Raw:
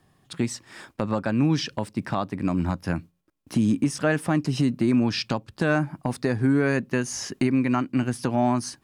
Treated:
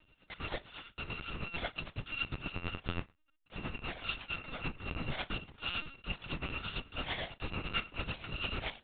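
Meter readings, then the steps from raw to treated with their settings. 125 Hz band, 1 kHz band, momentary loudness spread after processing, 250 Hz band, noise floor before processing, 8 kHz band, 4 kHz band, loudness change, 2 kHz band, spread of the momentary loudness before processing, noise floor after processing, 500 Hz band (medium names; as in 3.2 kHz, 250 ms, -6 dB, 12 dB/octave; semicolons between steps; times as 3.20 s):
-17.0 dB, -13.5 dB, 6 LU, -24.0 dB, -65 dBFS, under -40 dB, -4.0 dB, -14.5 dB, -7.5 dB, 8 LU, -72 dBFS, -19.0 dB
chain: bit-reversed sample order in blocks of 256 samples; reverse; compression 8:1, threshold -29 dBFS, peak gain reduction 12.5 dB; reverse; flutter echo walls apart 9 m, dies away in 0.23 s; LPC vocoder at 8 kHz pitch kept; tremolo 9 Hz, depth 61%; trim +7 dB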